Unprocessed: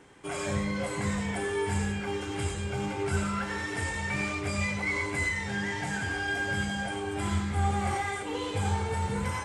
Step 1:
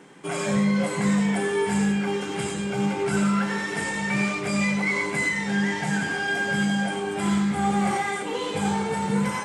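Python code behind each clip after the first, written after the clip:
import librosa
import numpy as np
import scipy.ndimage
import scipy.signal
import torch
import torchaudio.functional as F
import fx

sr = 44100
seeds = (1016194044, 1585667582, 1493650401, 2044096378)

y = fx.low_shelf_res(x, sr, hz=120.0, db=-12.5, q=3.0)
y = fx.hum_notches(y, sr, base_hz=60, count=5)
y = y * librosa.db_to_amplitude(5.0)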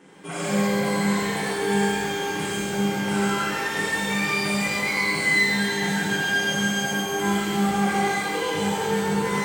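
y = x + 10.0 ** (-6.0 / 20.0) * np.pad(x, (int(137 * sr / 1000.0), 0))[:len(x)]
y = fx.rev_shimmer(y, sr, seeds[0], rt60_s=1.5, semitones=12, shimmer_db=-8, drr_db=-4.0)
y = y * librosa.db_to_amplitude(-5.0)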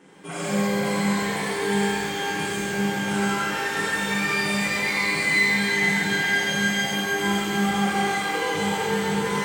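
y = fx.echo_banded(x, sr, ms=461, feedback_pct=61, hz=2600.0, wet_db=-3)
y = y * librosa.db_to_amplitude(-1.0)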